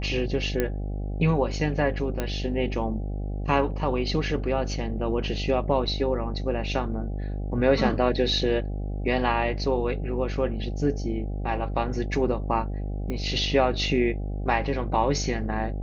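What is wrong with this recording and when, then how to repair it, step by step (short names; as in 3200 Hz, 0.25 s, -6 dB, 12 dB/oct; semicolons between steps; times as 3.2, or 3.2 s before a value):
buzz 50 Hz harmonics 16 -30 dBFS
0.6 pop -11 dBFS
2.2 pop -13 dBFS
13.1 pop -19 dBFS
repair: de-click; de-hum 50 Hz, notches 16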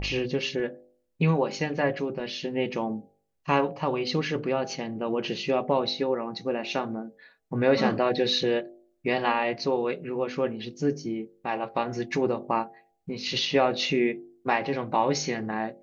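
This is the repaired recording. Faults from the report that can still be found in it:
13.1 pop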